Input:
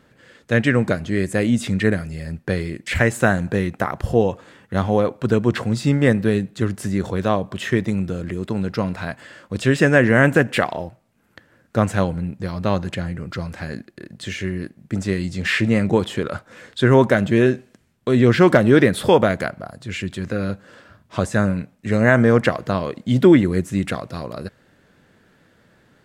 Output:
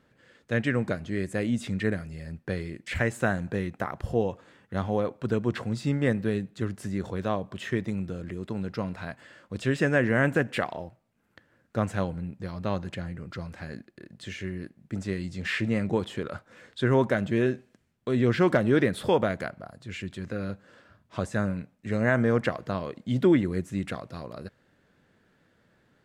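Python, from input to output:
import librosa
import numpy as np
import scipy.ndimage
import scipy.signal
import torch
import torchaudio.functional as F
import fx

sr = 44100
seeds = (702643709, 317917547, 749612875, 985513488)

y = fx.high_shelf(x, sr, hz=7400.0, db=-4.5)
y = y * 10.0 ** (-9.0 / 20.0)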